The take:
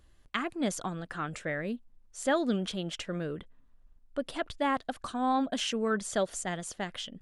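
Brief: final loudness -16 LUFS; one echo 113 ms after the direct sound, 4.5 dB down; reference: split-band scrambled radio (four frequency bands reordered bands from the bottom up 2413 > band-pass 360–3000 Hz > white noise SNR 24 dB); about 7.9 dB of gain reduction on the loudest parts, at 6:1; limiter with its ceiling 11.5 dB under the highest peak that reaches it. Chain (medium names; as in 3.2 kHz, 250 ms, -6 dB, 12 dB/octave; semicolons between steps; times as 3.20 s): compression 6:1, threshold -32 dBFS; peak limiter -30 dBFS; delay 113 ms -4.5 dB; four frequency bands reordered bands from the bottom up 2413; band-pass 360–3000 Hz; white noise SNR 24 dB; trim +24 dB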